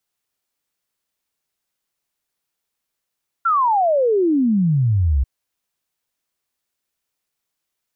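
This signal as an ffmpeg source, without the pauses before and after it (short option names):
-f lavfi -i "aevalsrc='0.211*clip(min(t,1.79-t)/0.01,0,1)*sin(2*PI*1400*1.79/log(62/1400)*(exp(log(62/1400)*t/1.79)-1))':d=1.79:s=44100"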